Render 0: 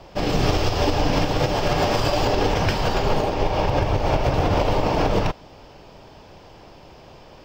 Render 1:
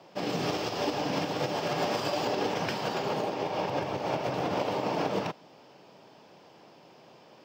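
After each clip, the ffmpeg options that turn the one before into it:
-af "highpass=f=150:w=0.5412,highpass=f=150:w=1.3066,volume=-8dB"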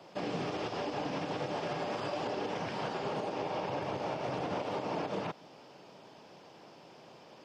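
-filter_complex "[0:a]alimiter=level_in=2dB:limit=-24dB:level=0:latency=1:release=153,volume=-2dB,acrossover=split=3100[a][b];[b]acompressor=threshold=-52dB:ratio=4:attack=1:release=60[c];[a][c]amix=inputs=2:normalize=0" -ar 48000 -c:a mp2 -b:a 64k

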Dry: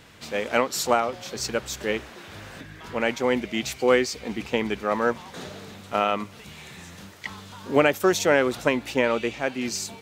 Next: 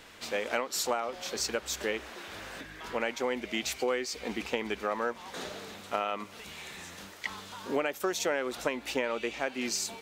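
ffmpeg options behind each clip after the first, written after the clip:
-af "equalizer=f=120:w=0.93:g=-13.5,acompressor=threshold=-28dB:ratio=4"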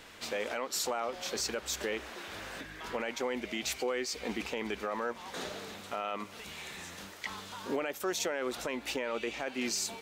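-af "alimiter=limit=-23.5dB:level=0:latency=1:release=10"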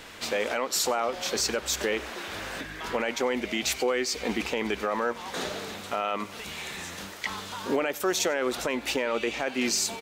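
-af "aecho=1:1:95:0.0708,volume=7dB"

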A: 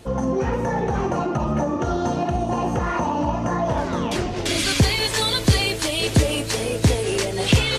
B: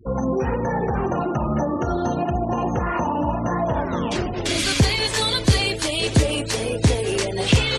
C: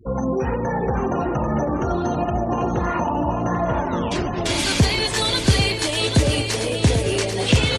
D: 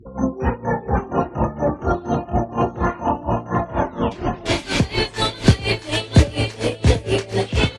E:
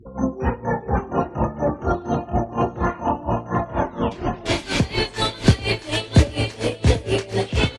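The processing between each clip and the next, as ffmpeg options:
-af "afftfilt=real='re*gte(hypot(re,im),0.02)':imag='im*gte(hypot(re,im),0.02)':win_size=1024:overlap=0.75"
-af "aecho=1:1:790|1580|2370|3160:0.447|0.161|0.0579|0.0208"
-filter_complex "[0:a]highshelf=f=5.6k:g=-11,asplit=2[a][b];[b]adelay=26,volume=-9dB[c];[a][c]amix=inputs=2:normalize=0,aeval=exprs='val(0)*pow(10,-20*(0.5-0.5*cos(2*PI*4.2*n/s))/20)':c=same,volume=5.5dB"
-filter_complex "[0:a]asplit=2[a][b];[b]adelay=105,volume=-27dB,highshelf=f=4k:g=-2.36[c];[a][c]amix=inputs=2:normalize=0,volume=-1.5dB"

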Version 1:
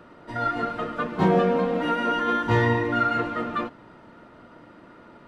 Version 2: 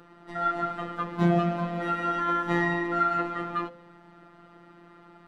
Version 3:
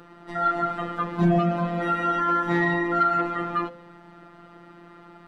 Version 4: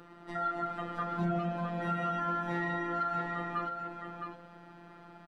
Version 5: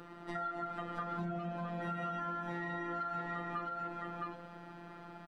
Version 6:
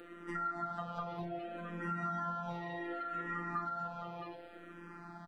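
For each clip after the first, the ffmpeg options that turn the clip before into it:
-af "afftfilt=real='hypot(re,im)*cos(PI*b)':imag='0':win_size=1024:overlap=0.75,bandreject=f=47:t=h:w=4,bandreject=f=94:t=h:w=4,bandreject=f=141:t=h:w=4,bandreject=f=188:t=h:w=4,bandreject=f=235:t=h:w=4,bandreject=f=282:t=h:w=4,bandreject=f=329:t=h:w=4,bandreject=f=376:t=h:w=4,bandreject=f=423:t=h:w=4,bandreject=f=470:t=h:w=4,bandreject=f=517:t=h:w=4,bandreject=f=564:t=h:w=4,bandreject=f=611:t=h:w=4"
-af "asoftclip=type=tanh:threshold=-15dB,volume=4.5dB"
-af "acompressor=threshold=-29dB:ratio=2,aecho=1:1:663:0.501,volume=-5dB"
-af "acompressor=threshold=-38dB:ratio=6,volume=2dB"
-filter_complex "[0:a]asplit=2[a][b];[b]afreqshift=-0.66[c];[a][c]amix=inputs=2:normalize=1,volume=2.5dB"

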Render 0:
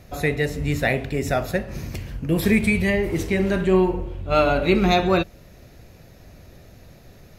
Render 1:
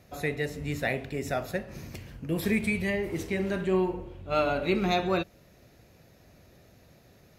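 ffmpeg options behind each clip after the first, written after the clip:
-af "highpass=f=110:p=1,volume=-7.5dB"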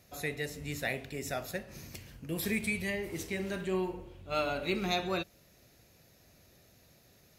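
-af "highshelf=f=3k:g=10.5,volume=-7dB"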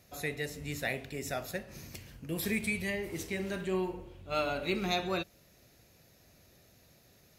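-af anull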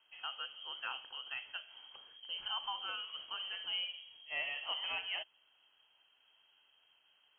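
-af "lowpass=f=2.8k:t=q:w=0.5098,lowpass=f=2.8k:t=q:w=0.6013,lowpass=f=2.8k:t=q:w=0.9,lowpass=f=2.8k:t=q:w=2.563,afreqshift=-3300,volume=-7dB"

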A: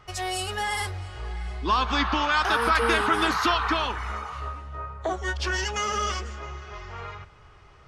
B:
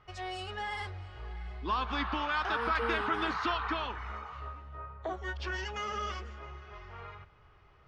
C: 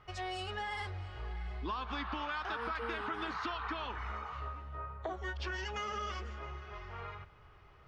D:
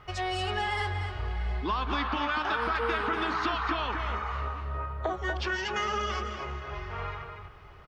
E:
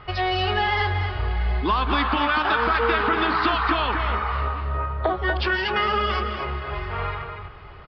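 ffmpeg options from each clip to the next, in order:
-af "lowpass=3.7k,volume=-8.5dB"
-af "acompressor=threshold=-37dB:ratio=5,volume=1.5dB"
-filter_complex "[0:a]asplit=2[a][b];[b]adelay=239.1,volume=-6dB,highshelf=f=4k:g=-5.38[c];[a][c]amix=inputs=2:normalize=0,volume=8dB"
-af "aresample=11025,aresample=44100,volume=8dB"

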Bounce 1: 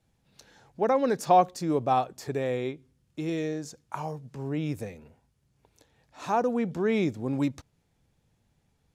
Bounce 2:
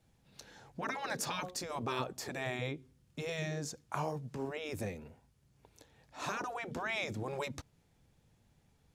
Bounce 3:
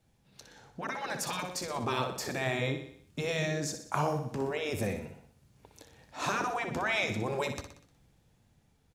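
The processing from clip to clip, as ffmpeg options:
-af "afftfilt=real='re*lt(hypot(re,im),0.141)':imag='im*lt(hypot(re,im),0.141)':win_size=1024:overlap=0.75,volume=1dB"
-filter_complex "[0:a]dynaudnorm=f=690:g=5:m=6dB,asplit=2[a][b];[b]aecho=0:1:61|122|183|244|305|366:0.376|0.199|0.106|0.056|0.0297|0.0157[c];[a][c]amix=inputs=2:normalize=0"

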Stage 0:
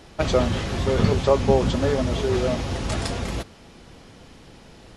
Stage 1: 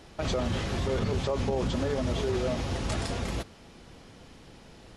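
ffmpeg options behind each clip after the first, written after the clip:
-af "alimiter=limit=-16dB:level=0:latency=1:release=46,volume=-4dB"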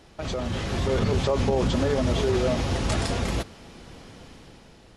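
-af "dynaudnorm=f=200:g=7:m=7dB,volume=-1.5dB"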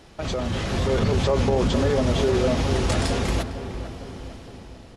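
-filter_complex "[0:a]asplit=2[a][b];[b]asoftclip=type=tanh:threshold=-24.5dB,volume=-7dB[c];[a][c]amix=inputs=2:normalize=0,asplit=2[d][e];[e]adelay=454,lowpass=f=1.5k:p=1,volume=-9.5dB,asplit=2[f][g];[g]adelay=454,lowpass=f=1.5k:p=1,volume=0.54,asplit=2[h][i];[i]adelay=454,lowpass=f=1.5k:p=1,volume=0.54,asplit=2[j][k];[k]adelay=454,lowpass=f=1.5k:p=1,volume=0.54,asplit=2[l][m];[m]adelay=454,lowpass=f=1.5k:p=1,volume=0.54,asplit=2[n][o];[o]adelay=454,lowpass=f=1.5k:p=1,volume=0.54[p];[d][f][h][j][l][n][p]amix=inputs=7:normalize=0"

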